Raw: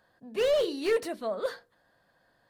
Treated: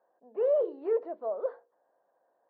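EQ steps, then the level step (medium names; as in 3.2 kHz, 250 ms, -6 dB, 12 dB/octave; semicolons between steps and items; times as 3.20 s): Butterworth band-pass 620 Hz, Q 1.1; distance through air 120 m; 0.0 dB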